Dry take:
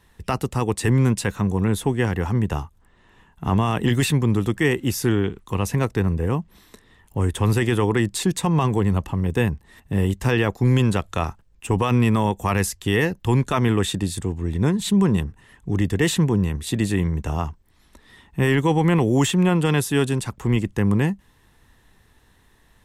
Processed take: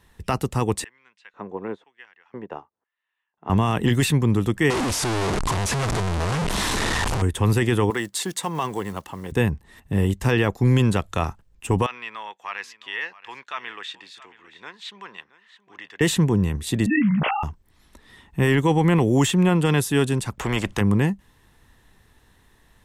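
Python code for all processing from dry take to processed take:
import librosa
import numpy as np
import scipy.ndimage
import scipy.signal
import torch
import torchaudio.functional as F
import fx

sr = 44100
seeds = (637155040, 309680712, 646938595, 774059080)

y = fx.chain(x, sr, fx.filter_lfo_highpass(shape='square', hz=1.0, low_hz=450.0, high_hz=2300.0, q=1.0),
    fx.spacing_loss(db_at_10k=40),
    fx.upward_expand(threshold_db=-50.0, expansion=1.5), at=(0.84, 3.5))
y = fx.chain(y, sr, fx.clip_1bit(),
    fx.lowpass(hz=10000.0, slope=24),
    fx.peak_eq(hz=940.0, db=4.5, octaves=1.0), at=(4.7, 7.22))
y = fx.chain(y, sr, fx.block_float(bits=7),
    fx.highpass(hz=650.0, slope=6),
    fx.notch(hz=2500.0, q=11.0), at=(7.9, 9.32))
y = fx.chain(y, sr, fx.highpass(hz=1500.0, slope=12),
    fx.air_absorb(metres=230.0),
    fx.echo_single(ms=672, db=-18.0), at=(11.86, 16.01))
y = fx.chain(y, sr, fx.sine_speech(),
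    fx.doubler(ms=14.0, db=-4),
    fx.sustainer(db_per_s=25.0), at=(16.86, 17.43))
y = fx.chain(y, sr, fx.high_shelf(hz=4800.0, db=-12.0),
    fx.spectral_comp(ratio=2.0), at=(20.39, 20.81))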